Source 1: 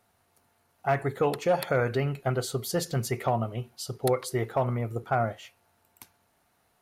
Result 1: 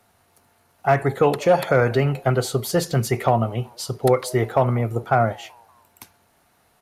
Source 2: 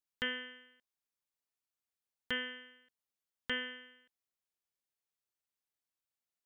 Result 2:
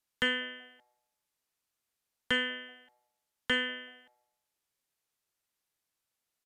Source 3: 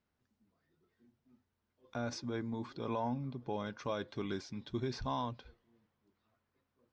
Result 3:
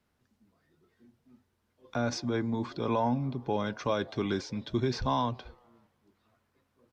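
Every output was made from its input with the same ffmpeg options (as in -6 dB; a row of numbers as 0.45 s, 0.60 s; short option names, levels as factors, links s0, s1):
-filter_complex "[0:a]acrossover=split=270|740|1600[s0][s1][s2][s3];[s1]asplit=4[s4][s5][s6][s7];[s5]adelay=189,afreqshift=120,volume=0.1[s8];[s6]adelay=378,afreqshift=240,volume=0.0462[s9];[s7]adelay=567,afreqshift=360,volume=0.0211[s10];[s4][s8][s9][s10]amix=inputs=4:normalize=0[s11];[s3]asoftclip=type=tanh:threshold=0.0266[s12];[s0][s11][s2][s12]amix=inputs=4:normalize=0,aresample=32000,aresample=44100,volume=2.51"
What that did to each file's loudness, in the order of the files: +8.0 LU, +7.0 LU, +8.0 LU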